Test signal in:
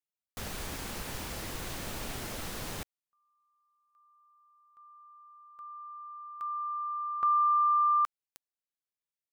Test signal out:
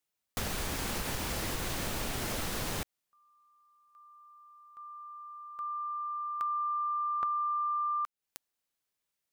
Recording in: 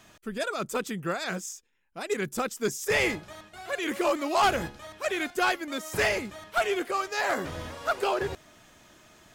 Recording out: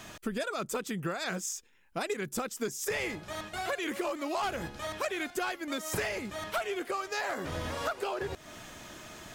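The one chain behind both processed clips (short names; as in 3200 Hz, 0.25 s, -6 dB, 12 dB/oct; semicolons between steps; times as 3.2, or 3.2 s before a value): compressor 12:1, threshold -39 dBFS; gain +8.5 dB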